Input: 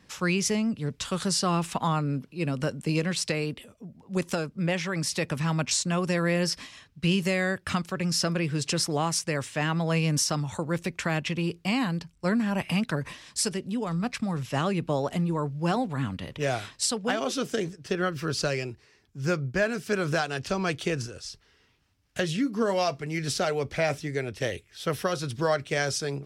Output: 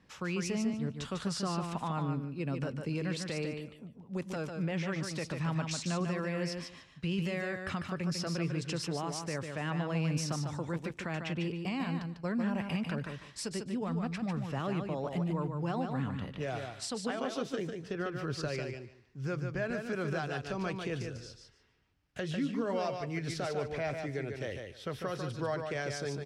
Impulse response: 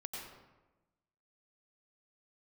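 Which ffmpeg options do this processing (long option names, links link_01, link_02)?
-filter_complex "[0:a]lowpass=frequency=2700:poles=1,alimiter=limit=-20.5dB:level=0:latency=1:release=84,asplit=2[link_01][link_02];[link_02]aecho=0:1:148|296|444:0.531|0.0956|0.0172[link_03];[link_01][link_03]amix=inputs=2:normalize=0,volume=-5.5dB"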